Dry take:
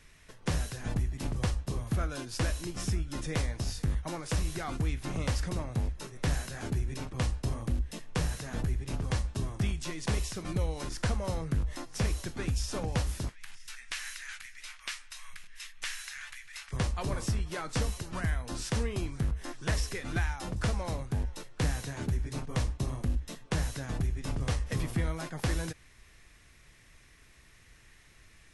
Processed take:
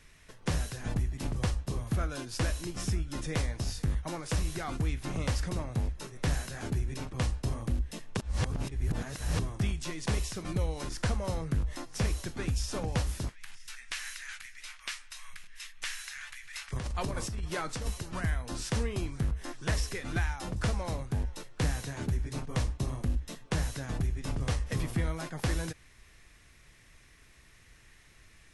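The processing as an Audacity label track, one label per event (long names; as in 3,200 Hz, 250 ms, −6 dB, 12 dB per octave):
8.170000	9.390000	reverse
16.430000	17.880000	compressor whose output falls as the input rises −33 dBFS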